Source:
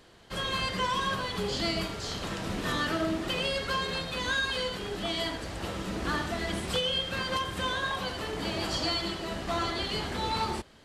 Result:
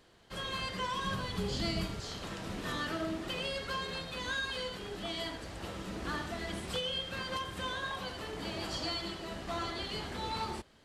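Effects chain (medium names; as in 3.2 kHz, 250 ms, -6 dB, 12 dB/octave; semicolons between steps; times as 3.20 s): 1.04–2.00 s: tone controls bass +8 dB, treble +2 dB; trim -6.5 dB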